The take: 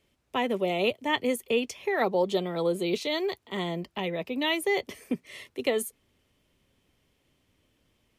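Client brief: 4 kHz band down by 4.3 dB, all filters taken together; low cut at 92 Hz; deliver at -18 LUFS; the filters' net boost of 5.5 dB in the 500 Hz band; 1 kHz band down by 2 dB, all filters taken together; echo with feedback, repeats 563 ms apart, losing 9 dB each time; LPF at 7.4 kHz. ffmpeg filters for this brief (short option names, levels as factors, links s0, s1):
-af "highpass=92,lowpass=7400,equalizer=f=500:t=o:g=8,equalizer=f=1000:t=o:g=-6.5,equalizer=f=4000:t=o:g=-5.5,aecho=1:1:563|1126|1689|2252:0.355|0.124|0.0435|0.0152,volume=2.37"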